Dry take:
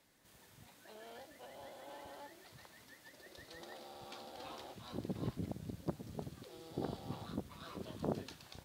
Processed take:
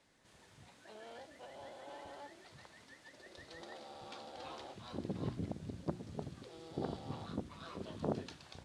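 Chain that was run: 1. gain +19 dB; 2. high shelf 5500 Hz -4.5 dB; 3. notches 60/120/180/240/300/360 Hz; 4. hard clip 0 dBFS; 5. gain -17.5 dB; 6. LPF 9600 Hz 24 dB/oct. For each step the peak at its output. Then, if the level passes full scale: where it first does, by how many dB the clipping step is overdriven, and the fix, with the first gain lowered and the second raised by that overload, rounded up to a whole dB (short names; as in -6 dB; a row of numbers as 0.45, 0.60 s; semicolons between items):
-3.0, -3.0, -3.5, -3.5, -21.0, -21.0 dBFS; no overload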